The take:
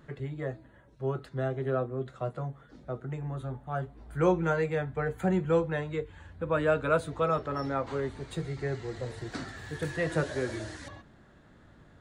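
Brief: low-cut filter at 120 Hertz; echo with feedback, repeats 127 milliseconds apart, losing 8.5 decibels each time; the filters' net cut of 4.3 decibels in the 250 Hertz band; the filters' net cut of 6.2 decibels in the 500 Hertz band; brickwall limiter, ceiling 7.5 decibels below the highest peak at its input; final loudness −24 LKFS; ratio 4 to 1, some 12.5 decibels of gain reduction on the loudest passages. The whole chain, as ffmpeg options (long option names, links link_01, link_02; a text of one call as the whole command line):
ffmpeg -i in.wav -af "highpass=120,equalizer=frequency=250:width_type=o:gain=-4,equalizer=frequency=500:width_type=o:gain=-6.5,acompressor=threshold=-39dB:ratio=4,alimiter=level_in=11dB:limit=-24dB:level=0:latency=1,volume=-11dB,aecho=1:1:127|254|381|508:0.376|0.143|0.0543|0.0206,volume=20.5dB" out.wav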